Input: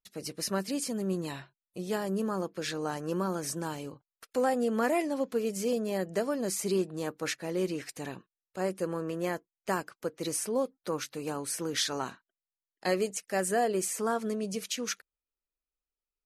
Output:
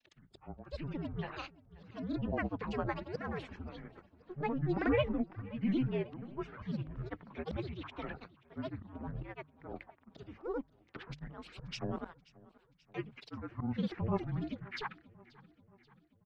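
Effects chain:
single-sideband voice off tune −250 Hz 360–2,800 Hz
volume swells 271 ms
granular cloud, pitch spread up and down by 12 semitones
mains-hum notches 50/100/150 Hz
on a send: repeating echo 532 ms, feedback 57%, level −22 dB
on the sum: level +1 dB

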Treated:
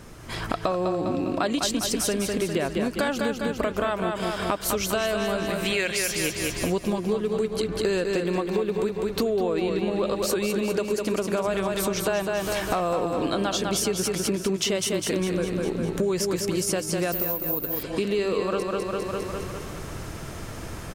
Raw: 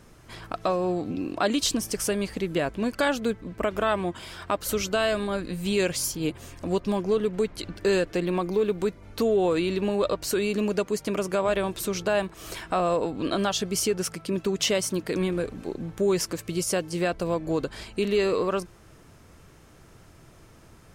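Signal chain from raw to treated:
0:05.50–0:06.32: graphic EQ with 10 bands 125 Hz −4 dB, 250 Hz −7 dB, 2,000 Hz +10 dB
repeating echo 202 ms, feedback 52%, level −5.5 dB
0:17.12–0:17.83: bad sample-rate conversion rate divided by 3×, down none, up zero stuff
automatic gain control gain up to 7.5 dB
0:09.38–0:10.06: high-shelf EQ 5,700 Hz −6.5 dB
downward compressor 5 to 1, threshold −32 dBFS, peak gain reduction 19 dB
level +7.5 dB

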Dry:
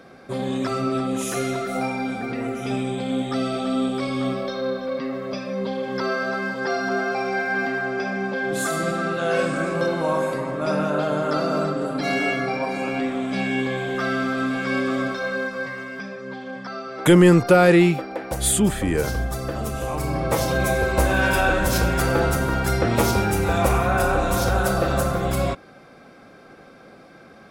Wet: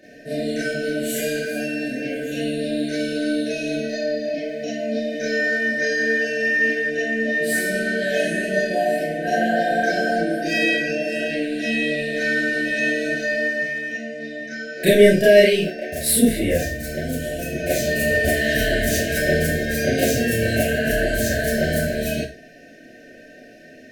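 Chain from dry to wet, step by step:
four-comb reverb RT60 0.33 s, combs from 28 ms, DRR −8 dB
brick-wall band-stop 640–1,300 Hz
speed change +15%
level −6 dB

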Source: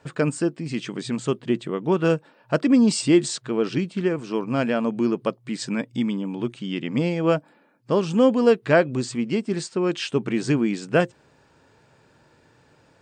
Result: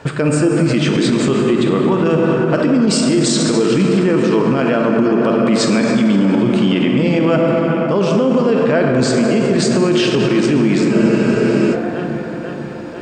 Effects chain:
high-shelf EQ 6,300 Hz −6.5 dB
reversed playback
downward compressor, threshold −26 dBFS, peak gain reduction 14 dB
reversed playback
delay with a low-pass on its return 494 ms, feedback 65%, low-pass 2,700 Hz, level −14.5 dB
on a send at −1 dB: convolution reverb RT60 4.4 s, pre-delay 8 ms
on the sum: boost into a limiter +24 dB
frozen spectrum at 0:10.94, 0.79 s
level −5 dB

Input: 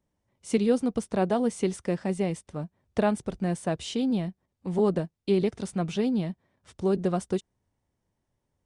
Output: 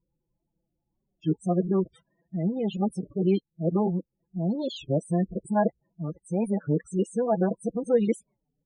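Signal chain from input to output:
played backwards from end to start
parametric band 100 Hz −8.5 dB 0.48 octaves
comb filter 6 ms, depth 59%
spectral peaks only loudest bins 16
wow of a warped record 33 1/3 rpm, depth 250 cents

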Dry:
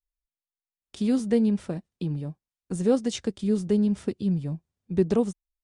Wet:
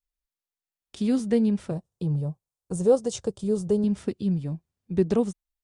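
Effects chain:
0:01.71–0:03.84: octave-band graphic EQ 125/250/500/1,000/2,000/4,000/8,000 Hz +9/−9/+6/+4/−12/−3/+4 dB

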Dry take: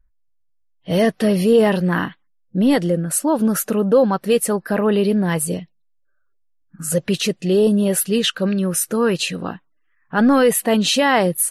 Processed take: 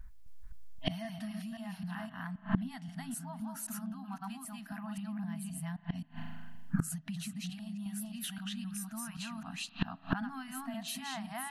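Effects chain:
delay that plays each chunk backwards 262 ms, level 0 dB
spring reverb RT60 1.3 s, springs 37 ms, chirp 30 ms, DRR 19 dB
0:04.96–0:07.50: dynamic equaliser 160 Hz, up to +6 dB, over −27 dBFS, Q 0.79
downward compressor 6 to 1, threshold −22 dBFS, peak gain reduction 15 dB
brick-wall band-stop 270–640 Hz
gate with flip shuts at −31 dBFS, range −29 dB
level +14.5 dB

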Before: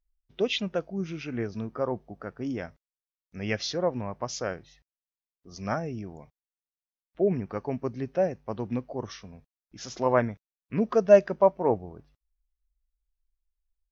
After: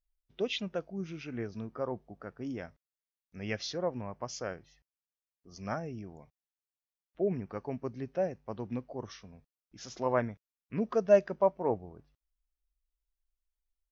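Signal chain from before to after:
0:03.78–0:06.09: notch filter 3,800 Hz, Q 8.1
level −6 dB

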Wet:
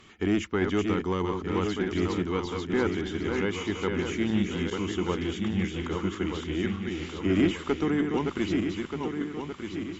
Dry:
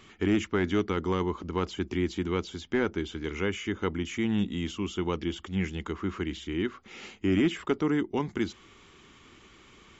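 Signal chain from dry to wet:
feedback delay that plays each chunk backwards 615 ms, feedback 67%, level −4.5 dB
0:04.70–0:06.45: downward expander −32 dBFS
harmonic generator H 4 −25 dB, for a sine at −11 dBFS

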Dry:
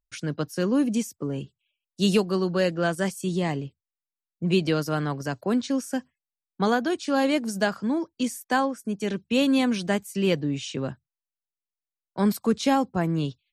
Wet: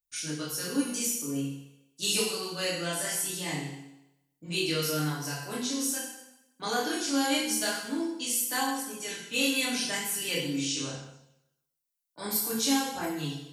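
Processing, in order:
first-order pre-emphasis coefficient 0.9
mains-hum notches 60/120/180 Hz
feedback delay network reverb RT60 0.89 s, low-frequency decay 0.95×, high-frequency decay 0.95×, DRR −5.5 dB
multi-voice chorus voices 2, 0.23 Hz, delay 25 ms, depth 4.1 ms
level +6 dB

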